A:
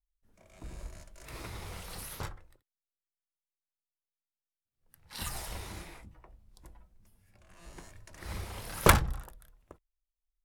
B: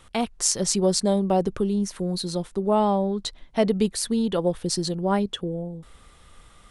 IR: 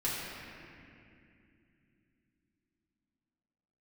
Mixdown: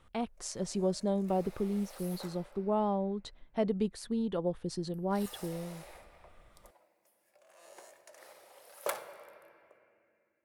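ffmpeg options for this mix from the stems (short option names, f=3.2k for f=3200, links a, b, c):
-filter_complex "[0:a]highpass=f=570:t=q:w=4.3,highshelf=f=7.4k:g=7.5,volume=-6.5dB,afade=t=out:st=8.1:d=0.23:silence=0.251189,asplit=2[a][b];[b]volume=-13dB[c];[1:a]highshelf=f=3.2k:g=-12,volume=-9dB,asplit=2[d][e];[e]apad=whole_len=460406[f];[a][f]sidechaincompress=threshold=-39dB:ratio=8:attack=16:release=999[g];[2:a]atrim=start_sample=2205[h];[c][h]afir=irnorm=-1:irlink=0[i];[g][d][i]amix=inputs=3:normalize=0"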